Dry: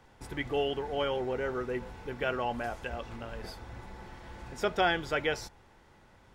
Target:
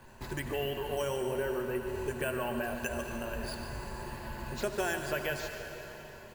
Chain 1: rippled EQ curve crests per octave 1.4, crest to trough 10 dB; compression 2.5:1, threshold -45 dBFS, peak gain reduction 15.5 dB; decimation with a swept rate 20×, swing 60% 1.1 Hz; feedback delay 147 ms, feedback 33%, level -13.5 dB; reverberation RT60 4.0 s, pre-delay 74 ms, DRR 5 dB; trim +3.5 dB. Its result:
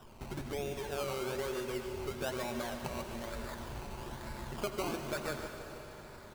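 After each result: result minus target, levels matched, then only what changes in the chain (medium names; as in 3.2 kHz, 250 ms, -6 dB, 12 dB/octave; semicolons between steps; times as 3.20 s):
decimation with a swept rate: distortion +13 dB; compression: peak gain reduction +4 dB
change: decimation with a swept rate 4×, swing 60% 1.1 Hz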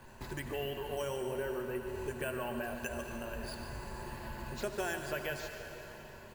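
compression: peak gain reduction +4 dB
change: compression 2.5:1, threshold -38.5 dBFS, peak gain reduction 11.5 dB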